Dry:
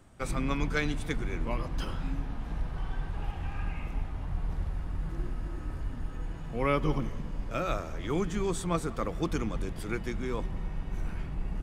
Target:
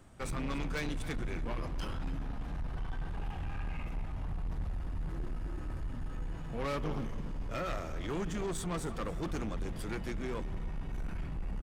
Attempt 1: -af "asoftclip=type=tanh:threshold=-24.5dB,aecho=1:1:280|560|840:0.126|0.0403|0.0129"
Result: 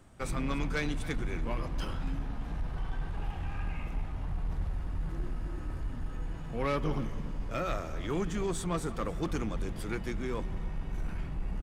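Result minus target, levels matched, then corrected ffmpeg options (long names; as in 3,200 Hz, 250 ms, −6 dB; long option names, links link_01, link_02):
soft clipping: distortion −6 dB
-af "asoftclip=type=tanh:threshold=-31.5dB,aecho=1:1:280|560|840:0.126|0.0403|0.0129"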